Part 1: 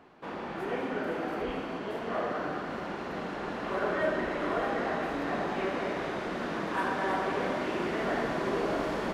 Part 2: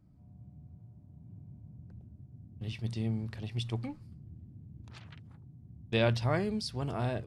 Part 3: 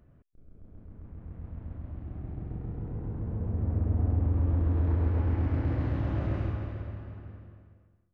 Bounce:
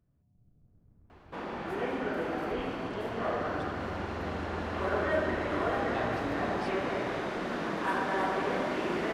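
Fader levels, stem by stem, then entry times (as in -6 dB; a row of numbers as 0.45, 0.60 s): 0.0, -15.0, -16.5 dB; 1.10, 0.00, 0.00 s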